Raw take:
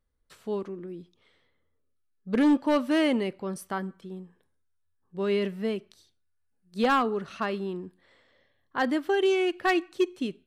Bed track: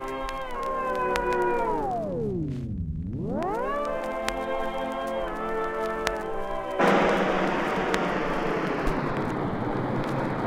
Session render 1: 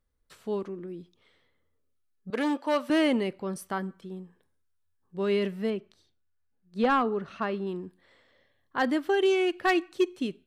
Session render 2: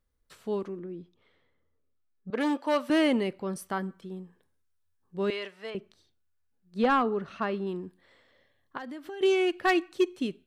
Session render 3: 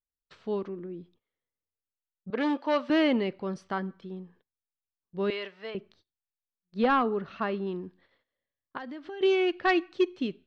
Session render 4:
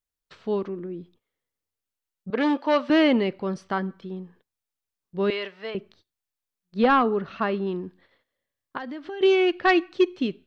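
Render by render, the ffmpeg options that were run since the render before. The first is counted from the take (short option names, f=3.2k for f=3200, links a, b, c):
-filter_complex "[0:a]asettb=1/sr,asplit=3[a][b][c];[a]atrim=end=2.304[d];[b]atrim=start=2.3:end=2.9,asetpts=PTS-STARTPTS,afade=t=in:d=0.004:c=qsin,afade=t=out:st=0.596:d=0.004:c=qsin,highpass=430[e];[c]atrim=start=2.896[f];[d][e]acrossfade=d=0.004:c1=hsin:c2=qsin[g];[g][f]acrossfade=d=0.004:c1=qsin:c2=hsin,asettb=1/sr,asplit=3[h][i][j];[h]atrim=end=5.704[k];[i]atrim=start=5.7:end=7.67,asetpts=PTS-STARTPTS,afade=t=in:d=0.004:c=qsin,afade=t=out:st=1.966:d=0.004:c=qsin,lowpass=f=2.3k:p=1[l];[j]atrim=start=7.666[m];[k][l]acrossfade=d=0.004:c1=hsin:c2=qsin[n];[n][m]acrossfade=d=0.004:c1=qsin:c2=hsin"
-filter_complex "[0:a]asplit=3[a][b][c];[a]afade=t=out:st=0.79:d=0.02[d];[b]aemphasis=mode=reproduction:type=75kf,afade=t=in:st=0.79:d=0.02,afade=t=out:st=2.39:d=0.02[e];[c]afade=t=in:st=2.39:d=0.02[f];[d][e][f]amix=inputs=3:normalize=0,asettb=1/sr,asplit=3[g][h][i];[g]atrim=end=5.304[j];[h]atrim=start=5.3:end=5.75,asetpts=PTS-STARTPTS,afade=t=in:d=0.004:c=qsin,afade=t=out:st=0.446:d=0.004:c=qsin,highpass=730,lowpass=7.7k[k];[i]atrim=start=5.746[l];[j][k]acrossfade=d=0.004:c1=hsin:c2=qsin[m];[m][l]acrossfade=d=0.004:c1=qsin:c2=hsin,asettb=1/sr,asplit=3[n][o][p];[n]atrim=end=8.774[q];[o]atrim=start=8.77:end=9.21,asetpts=PTS-STARTPTS,afade=t=in:d=0.004:c=qsin,afade=t=out:st=0.436:d=0.004:c=qsin,acompressor=threshold=-37dB:ratio=8:attack=3.2:release=140:knee=1:detection=peak[r];[p]atrim=start=9.206[s];[q][r]acrossfade=d=0.004:c1=hsin:c2=qsin[t];[t][s]acrossfade=d=0.004:c1=qsin:c2=hsin"
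-af "agate=range=-23dB:threshold=-59dB:ratio=16:detection=peak,lowpass=f=5k:w=0.5412,lowpass=f=5k:w=1.3066"
-af "volume=5dB"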